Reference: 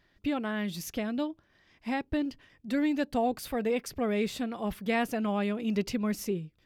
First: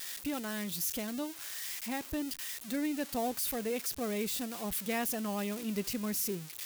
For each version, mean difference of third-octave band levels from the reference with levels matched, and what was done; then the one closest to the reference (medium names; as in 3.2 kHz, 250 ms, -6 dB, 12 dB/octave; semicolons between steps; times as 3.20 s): 9.5 dB: zero-crossing glitches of -23.5 dBFS; trim -6 dB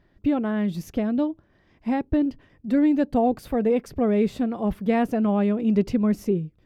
5.0 dB: tilt shelf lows +8 dB, about 1.3 kHz; trim +1.5 dB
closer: second